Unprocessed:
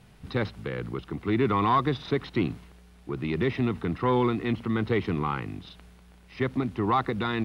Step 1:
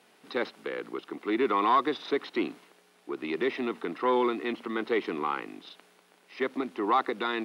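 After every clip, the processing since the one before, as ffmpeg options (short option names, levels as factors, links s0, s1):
-af "highpass=f=290:w=0.5412,highpass=f=290:w=1.3066"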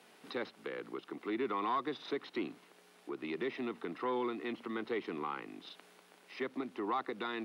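-filter_complex "[0:a]acrossover=split=150[s0][s1];[s1]acompressor=threshold=0.00282:ratio=1.5[s2];[s0][s2]amix=inputs=2:normalize=0"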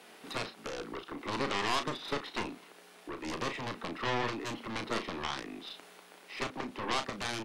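-filter_complex "[0:a]lowshelf=f=140:g=-5.5,aeval=exprs='0.0631*(cos(1*acos(clip(val(0)/0.0631,-1,1)))-cos(1*PI/2))+0.00891*(cos(4*acos(clip(val(0)/0.0631,-1,1)))-cos(4*PI/2))+0.0282*(cos(7*acos(clip(val(0)/0.0631,-1,1)))-cos(7*PI/2))':c=same,asplit=2[s0][s1];[s1]adelay=35,volume=0.376[s2];[s0][s2]amix=inputs=2:normalize=0"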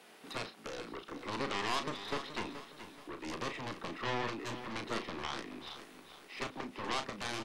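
-af "aecho=1:1:427|854|1281|1708:0.266|0.104|0.0405|0.0158,volume=0.668"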